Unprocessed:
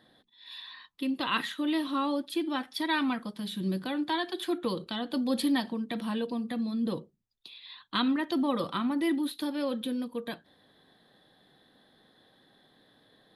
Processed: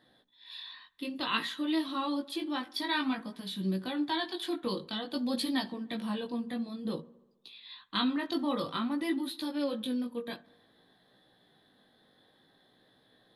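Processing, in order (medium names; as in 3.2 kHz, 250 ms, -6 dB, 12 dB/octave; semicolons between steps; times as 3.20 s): dynamic bell 4.4 kHz, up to +5 dB, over -49 dBFS, Q 1.7; feedback echo behind a low-pass 72 ms, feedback 65%, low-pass 1.9 kHz, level -22 dB; chorus 0.54 Hz, delay 15.5 ms, depth 5.5 ms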